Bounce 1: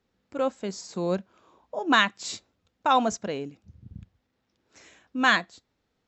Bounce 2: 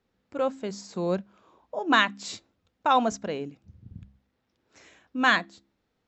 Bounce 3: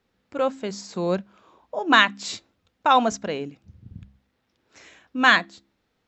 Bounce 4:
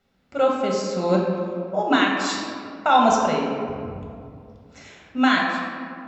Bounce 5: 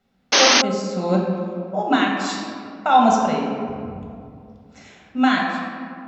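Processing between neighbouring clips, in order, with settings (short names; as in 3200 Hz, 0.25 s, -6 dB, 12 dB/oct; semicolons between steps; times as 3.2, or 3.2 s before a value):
high shelf 6400 Hz -7 dB; de-hum 66.91 Hz, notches 5
bell 2800 Hz +3.5 dB 2.9 oct; gain +2.5 dB
limiter -11.5 dBFS, peak gain reduction 10 dB; reverb RT60 2.4 s, pre-delay 5 ms, DRR -2 dB
small resonant body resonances 210/750 Hz, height 7 dB; painted sound noise, 0.32–0.62, 210–6500 Hz -13 dBFS; gain -1.5 dB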